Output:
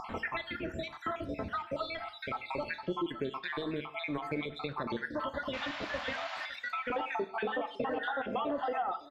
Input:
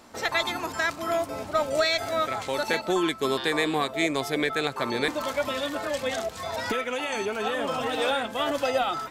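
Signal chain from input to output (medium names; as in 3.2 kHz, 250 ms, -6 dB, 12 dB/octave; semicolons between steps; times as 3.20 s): random holes in the spectrogram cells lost 63%; peaking EQ 520 Hz -7 dB 2.5 oct, from 6.90 s +7 dB; upward compressor, threshold -34 dBFS; peak limiter -20 dBFS, peak gain reduction 8.5 dB; compression, threshold -35 dBFS, peak gain reduction 10.5 dB; 5.53–6.46 s: painted sound noise 560–7500 Hz -40 dBFS; distance through air 390 m; delay 557 ms -21.5 dB; gated-style reverb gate 190 ms falling, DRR 9.5 dB; trim +5 dB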